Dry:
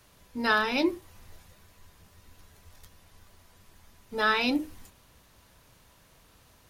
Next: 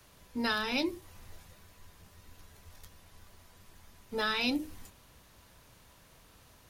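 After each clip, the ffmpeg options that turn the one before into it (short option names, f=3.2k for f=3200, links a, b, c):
-filter_complex "[0:a]acrossover=split=190|3000[a][b][c];[b]acompressor=threshold=-31dB:ratio=6[d];[a][d][c]amix=inputs=3:normalize=0"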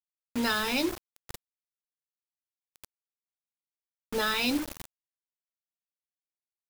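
-filter_complex "[0:a]asplit=2[a][b];[b]alimiter=level_in=3.5dB:limit=-24dB:level=0:latency=1:release=208,volume=-3.5dB,volume=-2dB[c];[a][c]amix=inputs=2:normalize=0,acrusher=bits=5:mix=0:aa=0.000001"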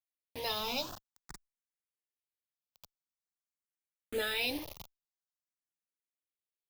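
-filter_complex "[0:a]asplit=2[a][b];[b]afreqshift=0.48[c];[a][c]amix=inputs=2:normalize=1,volume=-3dB"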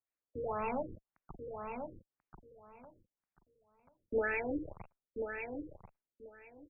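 -filter_complex "[0:a]asplit=2[a][b];[b]adelay=1037,lowpass=f=2.9k:p=1,volume=-6dB,asplit=2[c][d];[d]adelay=1037,lowpass=f=2.9k:p=1,volume=0.19,asplit=2[e][f];[f]adelay=1037,lowpass=f=2.9k:p=1,volume=0.19[g];[c][e][g]amix=inputs=3:normalize=0[h];[a][h]amix=inputs=2:normalize=0,afftfilt=real='re*lt(b*sr/1024,510*pow(2800/510,0.5+0.5*sin(2*PI*1.9*pts/sr)))':imag='im*lt(b*sr/1024,510*pow(2800/510,0.5+0.5*sin(2*PI*1.9*pts/sr)))':win_size=1024:overlap=0.75,volume=3dB"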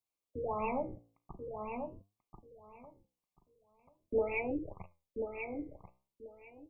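-af "flanger=delay=8.3:depth=9.8:regen=77:speed=0.44:shape=triangular,asuperstop=centerf=1600:order=20:qfactor=2,volume=6dB"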